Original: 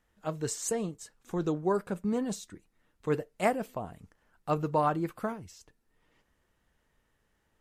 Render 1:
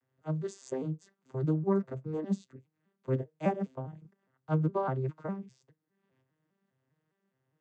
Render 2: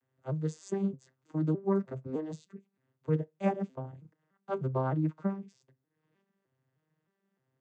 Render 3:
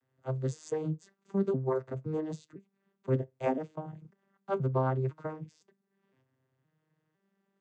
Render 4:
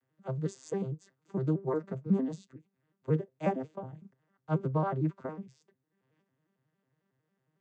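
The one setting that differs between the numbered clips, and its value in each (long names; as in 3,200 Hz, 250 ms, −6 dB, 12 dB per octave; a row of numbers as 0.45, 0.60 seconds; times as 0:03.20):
vocoder with an arpeggio as carrier, a note every: 203, 307, 510, 91 milliseconds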